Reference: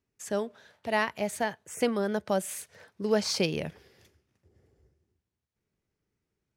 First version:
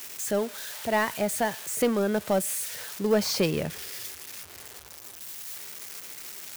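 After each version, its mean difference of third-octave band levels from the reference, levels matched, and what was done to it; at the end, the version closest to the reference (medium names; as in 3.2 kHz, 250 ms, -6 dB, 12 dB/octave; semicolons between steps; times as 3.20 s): 6.5 dB: zero-crossing glitches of -26.5 dBFS; treble shelf 3 kHz -7 dB; in parallel at -3.5 dB: overload inside the chain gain 26 dB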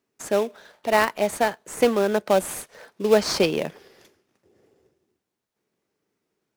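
4.0 dB: high-pass 270 Hz 12 dB/octave; dynamic bell 6 kHz, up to -3 dB, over -45 dBFS, Q 0.74; in parallel at -7 dB: sample-rate reducer 3.1 kHz, jitter 20%; on the sum: trim +6.5 dB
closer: second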